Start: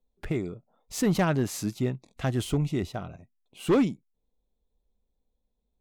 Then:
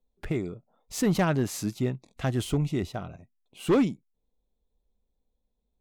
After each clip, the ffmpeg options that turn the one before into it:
-af anull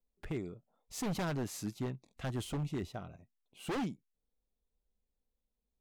-af "aeval=exprs='0.0891*(abs(mod(val(0)/0.0891+3,4)-2)-1)':c=same,volume=-8.5dB"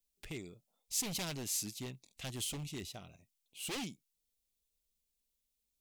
-af "aexciter=amount=2.3:drive=9.6:freq=2.2k,volume=-7dB"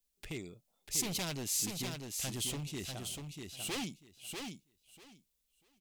-af "aecho=1:1:643|1286|1929:0.562|0.0956|0.0163,volume=2dB"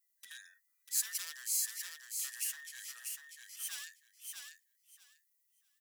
-af "afftfilt=real='real(if(between(b,1,1012),(2*floor((b-1)/92)+1)*92-b,b),0)':imag='imag(if(between(b,1,1012),(2*floor((b-1)/92)+1)*92-b,b),0)*if(between(b,1,1012),-1,1)':win_size=2048:overlap=0.75,aderivative"

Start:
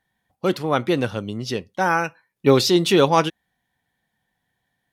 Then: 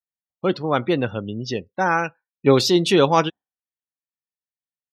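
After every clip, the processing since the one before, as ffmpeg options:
-af "afftdn=nr=35:nf=-36"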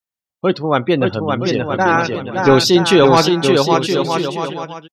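-af "aecho=1:1:570|969|1248|1444|1581:0.631|0.398|0.251|0.158|0.1,apsyclip=7dB,volume=-2dB"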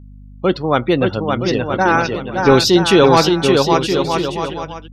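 -af "aeval=exprs='val(0)+0.0141*(sin(2*PI*50*n/s)+sin(2*PI*2*50*n/s)/2+sin(2*PI*3*50*n/s)/3+sin(2*PI*4*50*n/s)/4+sin(2*PI*5*50*n/s)/5)':c=same"

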